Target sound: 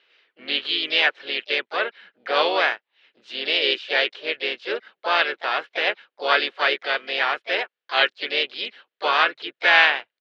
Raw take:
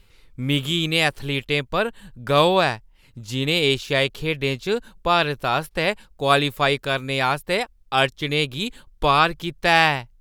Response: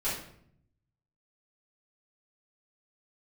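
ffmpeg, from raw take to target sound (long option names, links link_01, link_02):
-filter_complex "[0:a]highpass=frequency=390:width=0.5412,highpass=frequency=390:width=1.3066,equalizer=frequency=920:width_type=q:width=4:gain=-3,equalizer=frequency=1700:width_type=q:width=4:gain=10,equalizer=frequency=3000:width_type=q:width=4:gain=8,lowpass=frequency=3700:width=0.5412,lowpass=frequency=3700:width=1.3066,asplit=4[link_01][link_02][link_03][link_04];[link_02]asetrate=37084,aresample=44100,atempo=1.18921,volume=-9dB[link_05];[link_03]asetrate=55563,aresample=44100,atempo=0.793701,volume=-7dB[link_06];[link_04]asetrate=58866,aresample=44100,atempo=0.749154,volume=-13dB[link_07];[link_01][link_05][link_06][link_07]amix=inputs=4:normalize=0,volume=-4.5dB"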